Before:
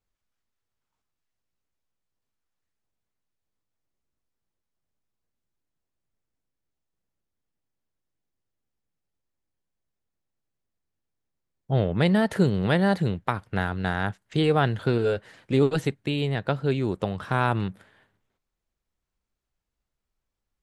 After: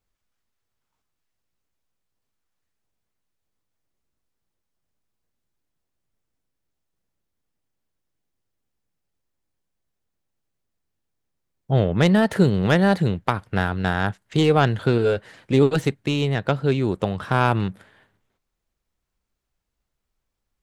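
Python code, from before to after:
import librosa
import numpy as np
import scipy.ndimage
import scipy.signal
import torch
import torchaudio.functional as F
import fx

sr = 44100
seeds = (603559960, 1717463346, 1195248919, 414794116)

y = fx.tracing_dist(x, sr, depth_ms=0.045)
y = y * 10.0 ** (4.0 / 20.0)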